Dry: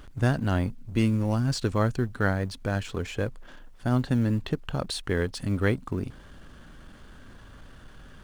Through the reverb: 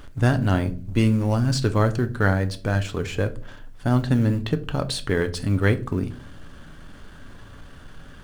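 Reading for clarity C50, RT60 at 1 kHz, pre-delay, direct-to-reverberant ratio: 17.5 dB, 0.35 s, 7 ms, 9.0 dB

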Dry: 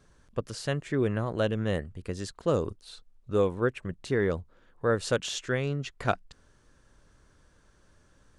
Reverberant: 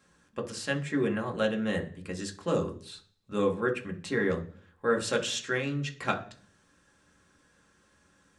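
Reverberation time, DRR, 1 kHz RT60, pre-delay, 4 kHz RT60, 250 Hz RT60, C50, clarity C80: 0.45 s, 2.0 dB, 0.40 s, 4 ms, 0.50 s, 0.65 s, 14.0 dB, 19.0 dB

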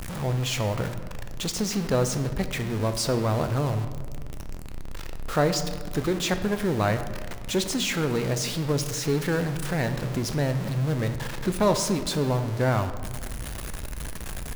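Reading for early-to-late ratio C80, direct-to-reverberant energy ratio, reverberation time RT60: 11.5 dB, 8.0 dB, 1.7 s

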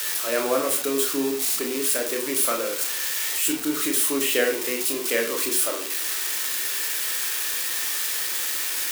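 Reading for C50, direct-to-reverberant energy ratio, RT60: 7.5 dB, 1.5 dB, 0.40 s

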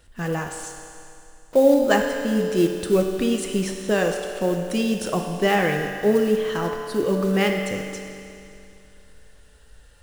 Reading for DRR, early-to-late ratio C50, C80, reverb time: 2.5 dB, 4.0 dB, 5.0 dB, 2.6 s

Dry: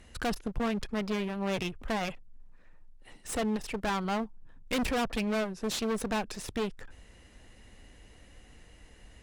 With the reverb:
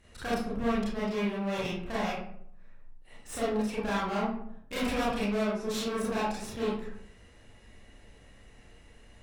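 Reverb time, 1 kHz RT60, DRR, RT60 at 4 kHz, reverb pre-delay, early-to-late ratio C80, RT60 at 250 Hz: 0.70 s, 0.60 s, -8.5 dB, 0.35 s, 28 ms, 5.0 dB, 0.80 s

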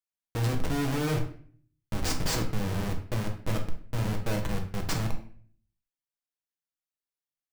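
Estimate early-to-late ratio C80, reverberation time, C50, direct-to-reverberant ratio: 12.5 dB, 0.50 s, 8.5 dB, 2.0 dB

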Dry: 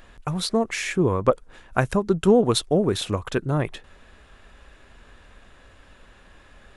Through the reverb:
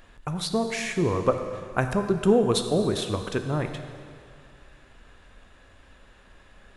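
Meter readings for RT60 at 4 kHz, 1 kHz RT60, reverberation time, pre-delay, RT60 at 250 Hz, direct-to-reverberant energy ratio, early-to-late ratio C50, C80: 2.2 s, 2.3 s, 2.3 s, 7 ms, 2.4 s, 7.0 dB, 8.0 dB, 9.0 dB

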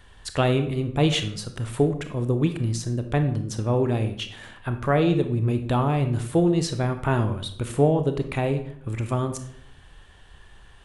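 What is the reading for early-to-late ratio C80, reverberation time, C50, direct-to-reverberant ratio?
13.5 dB, 0.65 s, 10.0 dB, 7.5 dB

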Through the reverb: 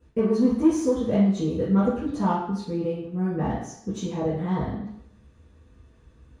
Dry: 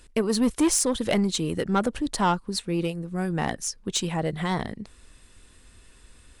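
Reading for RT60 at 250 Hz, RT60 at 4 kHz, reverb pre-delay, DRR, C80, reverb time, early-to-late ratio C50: 0.70 s, 0.70 s, 3 ms, -12.5 dB, 6.5 dB, 0.70 s, 3.5 dB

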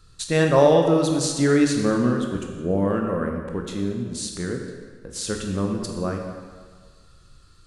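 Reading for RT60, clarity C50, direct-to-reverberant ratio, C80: 1.6 s, 4.0 dB, 2.0 dB, 5.5 dB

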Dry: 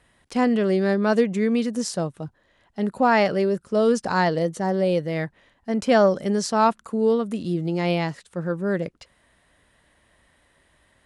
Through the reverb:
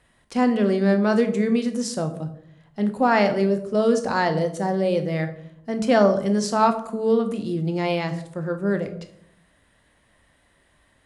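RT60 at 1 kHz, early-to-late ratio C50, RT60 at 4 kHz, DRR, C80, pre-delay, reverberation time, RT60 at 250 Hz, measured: 0.65 s, 11.5 dB, 0.40 s, 7.0 dB, 15.0 dB, 8 ms, 0.70 s, 0.90 s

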